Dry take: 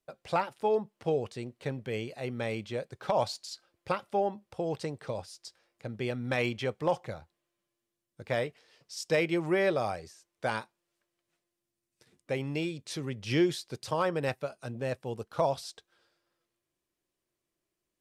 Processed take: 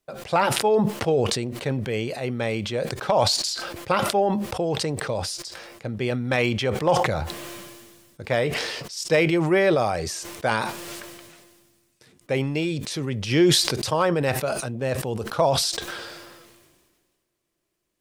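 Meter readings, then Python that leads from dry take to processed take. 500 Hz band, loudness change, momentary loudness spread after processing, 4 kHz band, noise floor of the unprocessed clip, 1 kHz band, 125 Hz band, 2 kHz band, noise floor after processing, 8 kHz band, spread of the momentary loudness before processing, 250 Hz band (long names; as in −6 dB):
+8.0 dB, +9.0 dB, 14 LU, +15.0 dB, below −85 dBFS, +9.0 dB, +10.0 dB, +9.0 dB, −74 dBFS, +17.0 dB, 13 LU, +9.0 dB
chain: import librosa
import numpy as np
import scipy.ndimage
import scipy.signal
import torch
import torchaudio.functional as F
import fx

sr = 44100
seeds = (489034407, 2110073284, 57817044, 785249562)

y = fx.sustainer(x, sr, db_per_s=33.0)
y = F.gain(torch.from_numpy(y), 7.0).numpy()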